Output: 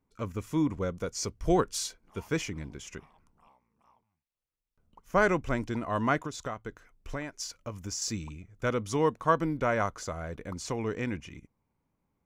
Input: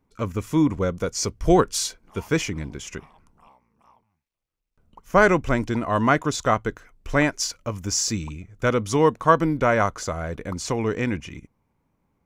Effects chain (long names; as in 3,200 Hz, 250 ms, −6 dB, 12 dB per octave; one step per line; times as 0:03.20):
0:06.25–0:08.02: downward compressor 6 to 1, threshold −25 dBFS, peak gain reduction 10.5 dB
level −8 dB